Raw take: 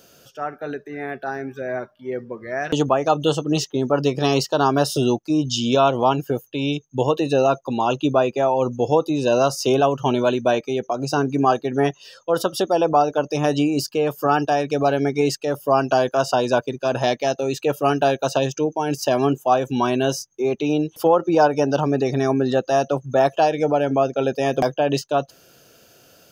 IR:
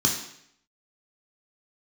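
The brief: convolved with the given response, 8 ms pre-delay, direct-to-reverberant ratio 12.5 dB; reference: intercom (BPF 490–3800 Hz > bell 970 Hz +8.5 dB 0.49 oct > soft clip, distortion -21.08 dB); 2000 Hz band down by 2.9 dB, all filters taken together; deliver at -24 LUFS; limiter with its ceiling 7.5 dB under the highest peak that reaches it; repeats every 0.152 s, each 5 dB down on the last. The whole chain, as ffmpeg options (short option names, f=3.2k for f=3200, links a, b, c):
-filter_complex "[0:a]equalizer=f=2k:t=o:g=-5,alimiter=limit=-12.5dB:level=0:latency=1,aecho=1:1:152|304|456|608|760|912|1064:0.562|0.315|0.176|0.0988|0.0553|0.031|0.0173,asplit=2[a][b];[1:a]atrim=start_sample=2205,adelay=8[c];[b][c]afir=irnorm=-1:irlink=0,volume=-24dB[d];[a][d]amix=inputs=2:normalize=0,highpass=490,lowpass=3.8k,equalizer=f=970:t=o:w=0.49:g=8.5,asoftclip=threshold=-12dB,volume=0.5dB"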